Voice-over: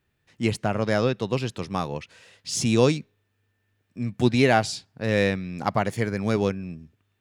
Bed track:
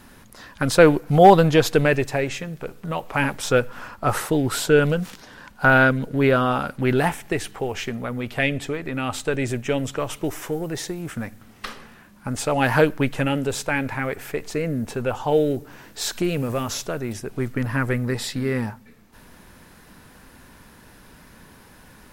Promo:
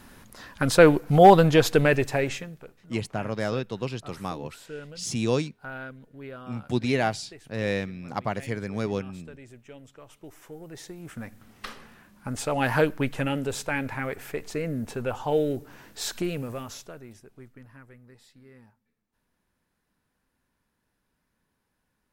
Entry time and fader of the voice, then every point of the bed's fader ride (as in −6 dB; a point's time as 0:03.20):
2.50 s, −5.5 dB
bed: 0:02.31 −2 dB
0:02.92 −23 dB
0:09.97 −23 dB
0:11.45 −5 dB
0:16.19 −5 dB
0:17.91 −28.5 dB